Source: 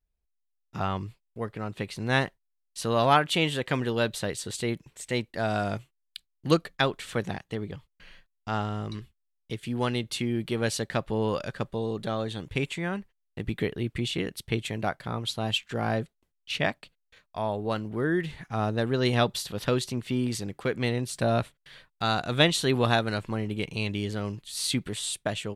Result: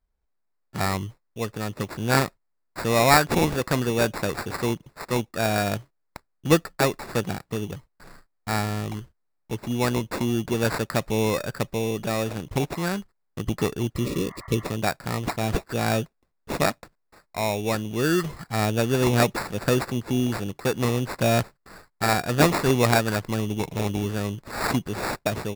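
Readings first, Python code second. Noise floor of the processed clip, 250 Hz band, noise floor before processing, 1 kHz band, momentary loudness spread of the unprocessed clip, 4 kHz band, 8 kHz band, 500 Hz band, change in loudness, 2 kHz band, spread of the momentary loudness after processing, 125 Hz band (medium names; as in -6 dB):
-73 dBFS, +4.0 dB, -77 dBFS, +4.0 dB, 13 LU, -0.5 dB, +5.0 dB, +4.0 dB, +4.0 dB, +3.5 dB, 11 LU, +4.0 dB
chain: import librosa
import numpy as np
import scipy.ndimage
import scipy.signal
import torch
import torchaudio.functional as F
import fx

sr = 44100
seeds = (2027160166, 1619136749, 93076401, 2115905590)

y = fx.sample_hold(x, sr, seeds[0], rate_hz=3100.0, jitter_pct=0)
y = fx.spec_repair(y, sr, seeds[1], start_s=13.98, length_s=0.64, low_hz=600.0, high_hz=2200.0, source='before')
y = F.gain(torch.from_numpy(y), 4.0).numpy()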